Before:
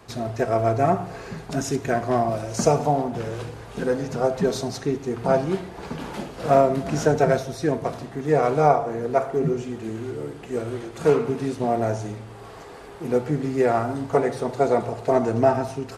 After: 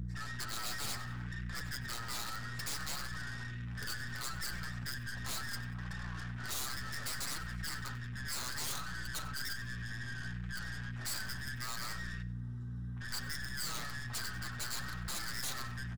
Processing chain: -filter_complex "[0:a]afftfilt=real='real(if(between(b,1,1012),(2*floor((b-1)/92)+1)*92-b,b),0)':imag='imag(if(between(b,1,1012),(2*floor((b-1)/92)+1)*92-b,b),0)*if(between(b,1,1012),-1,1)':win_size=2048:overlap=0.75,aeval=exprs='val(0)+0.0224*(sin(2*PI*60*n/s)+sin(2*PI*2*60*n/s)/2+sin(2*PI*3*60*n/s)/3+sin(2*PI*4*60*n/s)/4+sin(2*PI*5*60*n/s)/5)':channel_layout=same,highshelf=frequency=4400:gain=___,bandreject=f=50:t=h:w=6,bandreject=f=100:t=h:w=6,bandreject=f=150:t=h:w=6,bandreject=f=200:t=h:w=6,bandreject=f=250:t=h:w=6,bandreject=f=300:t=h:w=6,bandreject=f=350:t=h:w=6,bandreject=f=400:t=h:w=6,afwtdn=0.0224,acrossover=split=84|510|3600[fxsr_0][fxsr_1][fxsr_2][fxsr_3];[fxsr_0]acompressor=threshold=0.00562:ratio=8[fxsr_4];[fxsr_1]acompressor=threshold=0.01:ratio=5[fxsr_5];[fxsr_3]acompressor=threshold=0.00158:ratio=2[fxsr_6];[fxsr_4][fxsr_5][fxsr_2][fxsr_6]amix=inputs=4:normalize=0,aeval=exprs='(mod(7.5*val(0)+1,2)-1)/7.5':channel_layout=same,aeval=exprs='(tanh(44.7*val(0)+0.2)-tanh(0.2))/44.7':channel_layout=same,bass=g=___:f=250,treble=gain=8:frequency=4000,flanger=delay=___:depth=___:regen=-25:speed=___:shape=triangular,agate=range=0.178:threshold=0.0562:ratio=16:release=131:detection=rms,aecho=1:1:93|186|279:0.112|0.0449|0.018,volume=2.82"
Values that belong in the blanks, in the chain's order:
-6.5, 13, 5.5, 4.3, 0.66